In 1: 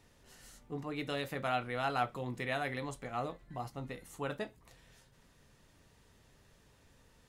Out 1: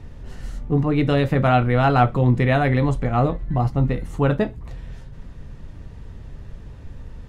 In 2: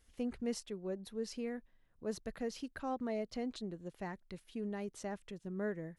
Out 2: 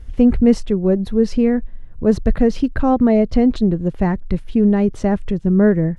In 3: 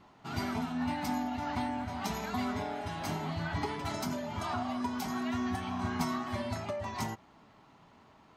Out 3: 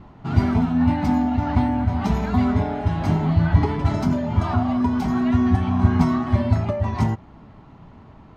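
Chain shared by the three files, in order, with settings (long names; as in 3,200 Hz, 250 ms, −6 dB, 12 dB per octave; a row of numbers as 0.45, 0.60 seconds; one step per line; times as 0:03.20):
RIAA equalisation playback
normalise the peak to −3 dBFS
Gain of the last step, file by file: +14.5, +19.5, +8.0 decibels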